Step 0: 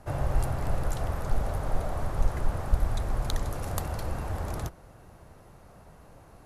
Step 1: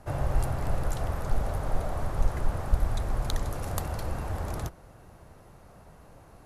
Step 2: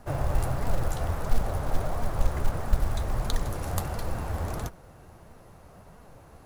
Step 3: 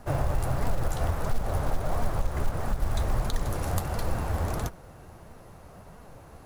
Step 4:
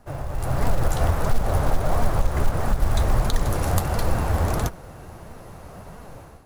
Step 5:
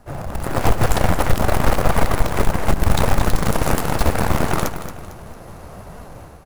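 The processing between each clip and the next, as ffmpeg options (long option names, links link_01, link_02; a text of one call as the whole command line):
ffmpeg -i in.wav -af anull out.wav
ffmpeg -i in.wav -af "flanger=delay=4.1:depth=9.6:regen=57:speed=1.5:shape=sinusoidal,acrusher=bits=7:mode=log:mix=0:aa=0.000001,volume=5.5dB" out.wav
ffmpeg -i in.wav -af "alimiter=limit=-18.5dB:level=0:latency=1:release=171,volume=2.5dB" out.wav
ffmpeg -i in.wav -af "dynaudnorm=framelen=310:gausssize=3:maxgain=13dB,volume=-5.5dB" out.wav
ffmpeg -i in.wav -af "aeval=exprs='0.355*(cos(1*acos(clip(val(0)/0.355,-1,1)))-cos(1*PI/2))+0.178*(cos(4*acos(clip(val(0)/0.355,-1,1)))-cos(4*PI/2))+0.126*(cos(7*acos(clip(val(0)/0.355,-1,1)))-cos(7*PI/2))':channel_layout=same,asoftclip=type=hard:threshold=-7dB,aecho=1:1:226|452|678|904:0.282|0.107|0.0407|0.0155" out.wav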